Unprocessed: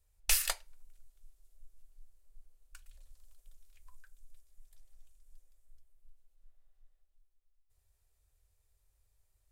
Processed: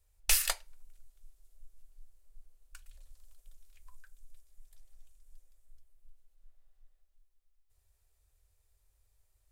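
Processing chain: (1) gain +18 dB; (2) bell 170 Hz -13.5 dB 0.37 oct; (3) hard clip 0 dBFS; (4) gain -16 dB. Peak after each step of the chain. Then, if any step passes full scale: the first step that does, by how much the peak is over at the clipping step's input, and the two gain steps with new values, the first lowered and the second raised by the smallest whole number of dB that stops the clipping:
+3.5, +3.5, 0.0, -16.0 dBFS; step 1, 3.5 dB; step 1 +14 dB, step 4 -12 dB

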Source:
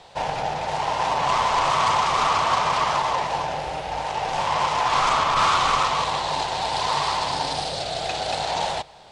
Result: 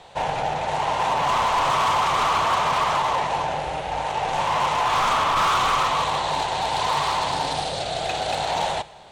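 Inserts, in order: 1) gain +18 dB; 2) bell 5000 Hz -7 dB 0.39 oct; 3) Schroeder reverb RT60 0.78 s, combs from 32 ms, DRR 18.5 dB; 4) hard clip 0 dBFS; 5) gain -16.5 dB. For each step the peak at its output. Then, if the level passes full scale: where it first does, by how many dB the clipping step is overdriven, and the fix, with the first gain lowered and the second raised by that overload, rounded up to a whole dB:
+11.0, +10.0, +10.0, 0.0, -16.5 dBFS; step 1, 10.0 dB; step 1 +8 dB, step 5 -6.5 dB

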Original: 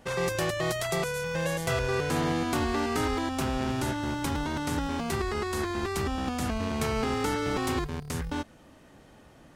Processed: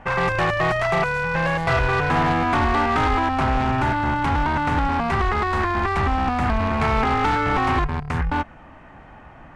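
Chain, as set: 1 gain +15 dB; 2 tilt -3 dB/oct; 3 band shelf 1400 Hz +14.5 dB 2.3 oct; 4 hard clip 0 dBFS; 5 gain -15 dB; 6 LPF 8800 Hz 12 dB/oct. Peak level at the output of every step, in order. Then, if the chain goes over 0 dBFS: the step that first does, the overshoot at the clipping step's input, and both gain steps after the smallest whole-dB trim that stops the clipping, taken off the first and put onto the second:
-2.5, +4.0, +9.5, 0.0, -15.0, -14.5 dBFS; step 2, 9.5 dB; step 1 +5 dB, step 5 -5 dB

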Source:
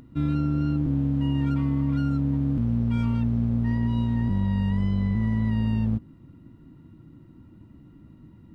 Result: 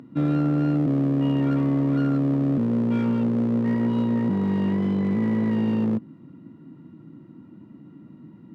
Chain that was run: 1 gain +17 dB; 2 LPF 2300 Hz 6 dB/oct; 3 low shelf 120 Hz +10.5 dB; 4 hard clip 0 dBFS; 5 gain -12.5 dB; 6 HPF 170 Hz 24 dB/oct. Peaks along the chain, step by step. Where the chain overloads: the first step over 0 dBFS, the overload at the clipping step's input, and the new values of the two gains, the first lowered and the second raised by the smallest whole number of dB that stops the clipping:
+1.5, +1.5, +7.5, 0.0, -12.5, -13.5 dBFS; step 1, 7.5 dB; step 1 +9 dB, step 5 -4.5 dB

